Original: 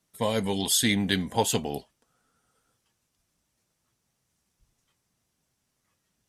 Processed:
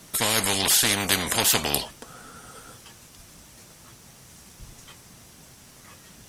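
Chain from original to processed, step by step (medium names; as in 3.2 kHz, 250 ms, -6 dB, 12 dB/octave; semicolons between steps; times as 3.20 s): spectrum-flattening compressor 4:1; trim +5 dB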